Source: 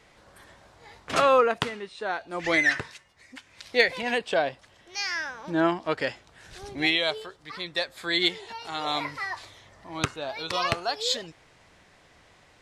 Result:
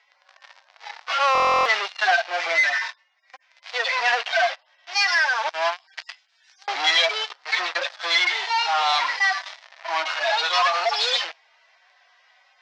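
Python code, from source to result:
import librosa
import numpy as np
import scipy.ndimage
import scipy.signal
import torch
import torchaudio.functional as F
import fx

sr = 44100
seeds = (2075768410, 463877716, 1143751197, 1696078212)

p1 = fx.hpss_only(x, sr, part='harmonic')
p2 = fx.differentiator(p1, sr, at=(5.49, 6.68))
p3 = fx.fuzz(p2, sr, gain_db=45.0, gate_db=-50.0)
p4 = p2 + (p3 * librosa.db_to_amplitude(-8.0))
p5 = scipy.signal.sosfilt(scipy.signal.ellip(3, 1.0, 80, [690.0, 5500.0], 'bandpass', fs=sr, output='sos'), p4)
p6 = fx.peak_eq(p5, sr, hz=2200.0, db=4.0, octaves=3.0)
p7 = fx.rider(p6, sr, range_db=4, speed_s=0.5)
y = fx.buffer_glitch(p7, sr, at_s=(1.33,), block=1024, repeats=13)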